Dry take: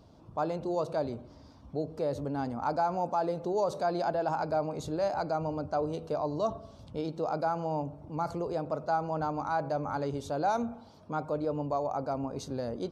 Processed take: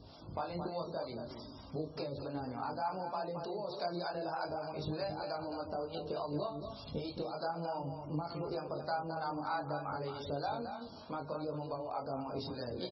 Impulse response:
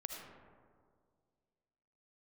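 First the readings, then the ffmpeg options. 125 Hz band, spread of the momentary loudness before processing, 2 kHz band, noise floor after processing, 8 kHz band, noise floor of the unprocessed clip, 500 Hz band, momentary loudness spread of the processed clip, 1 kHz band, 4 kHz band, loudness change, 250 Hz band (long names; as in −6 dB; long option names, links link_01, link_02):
−5.5 dB, 7 LU, −4.5 dB, −51 dBFS, can't be measured, −54 dBFS, −8.0 dB, 5 LU, −7.5 dB, +2.0 dB, −7.5 dB, −6.5 dB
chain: -filter_complex "[0:a]lowshelf=frequency=140:gain=-2.5,acompressor=threshold=-39dB:ratio=12,acrossover=split=580[link_01][link_02];[link_01]aeval=exprs='val(0)*(1-0.7/2+0.7/2*cos(2*PI*3.3*n/s))':channel_layout=same[link_03];[link_02]aeval=exprs='val(0)*(1-0.7/2-0.7/2*cos(2*PI*3.3*n/s))':channel_layout=same[link_04];[link_03][link_04]amix=inputs=2:normalize=0,crystalizer=i=4:c=0,flanger=delay=19:depth=5.3:speed=0.6,asplit=2[link_05][link_06];[link_06]adelay=34,volume=-11.5dB[link_07];[link_05][link_07]amix=inputs=2:normalize=0,asplit=2[link_08][link_09];[link_09]aecho=0:1:221:0.422[link_10];[link_08][link_10]amix=inputs=2:normalize=0,aresample=16000,aresample=44100,volume=9dB" -ar 24000 -c:a libmp3lame -b:a 16k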